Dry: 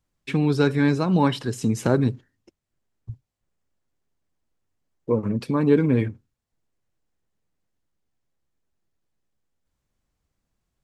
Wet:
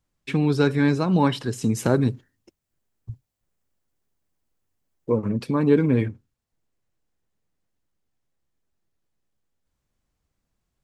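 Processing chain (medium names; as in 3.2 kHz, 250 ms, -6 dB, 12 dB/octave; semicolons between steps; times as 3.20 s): 1.64–5.18 s: treble shelf 9.9 kHz +9.5 dB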